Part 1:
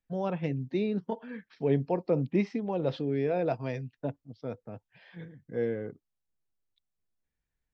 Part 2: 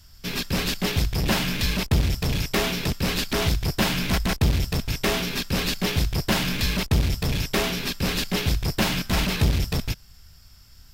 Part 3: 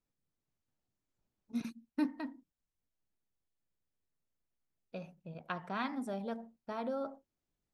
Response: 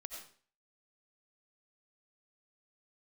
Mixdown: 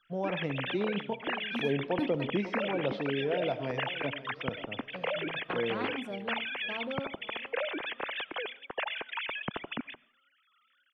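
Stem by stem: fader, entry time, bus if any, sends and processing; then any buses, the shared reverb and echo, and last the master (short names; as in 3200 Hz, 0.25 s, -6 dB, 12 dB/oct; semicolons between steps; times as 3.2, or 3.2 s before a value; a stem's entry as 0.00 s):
-2.0 dB, 0.00 s, bus A, send -3.5 dB, echo send -14.5 dB, low shelf 180 Hz -7.5 dB
-12.5 dB, 0.00 s, bus A, send -14.5 dB, no echo send, sine-wave speech
-0.5 dB, 0.00 s, no bus, no send, echo send -19.5 dB, dry
bus A: 0.0 dB, compressor, threshold -29 dBFS, peak gain reduction 6 dB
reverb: on, RT60 0.45 s, pre-delay 50 ms
echo: feedback echo 0.544 s, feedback 47%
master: high shelf 4000 Hz -6.5 dB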